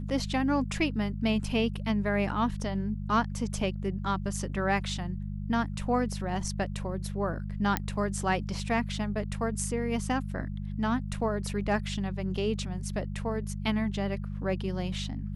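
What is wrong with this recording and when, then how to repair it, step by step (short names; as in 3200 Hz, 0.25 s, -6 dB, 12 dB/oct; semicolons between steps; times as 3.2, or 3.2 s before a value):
hum 50 Hz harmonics 4 -35 dBFS
7.77 pop -11 dBFS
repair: de-click; de-hum 50 Hz, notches 4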